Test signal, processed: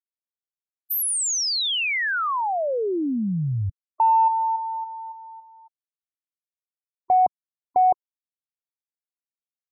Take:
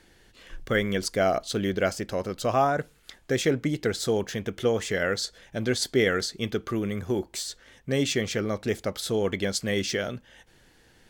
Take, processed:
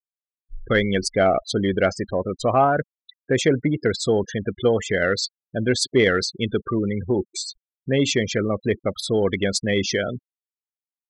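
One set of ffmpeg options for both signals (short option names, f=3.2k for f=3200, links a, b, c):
-af "afftfilt=real='re*gte(hypot(re,im),0.0316)':imag='im*gte(hypot(re,im),0.0316)':win_size=1024:overlap=0.75,acontrast=70,volume=-1dB"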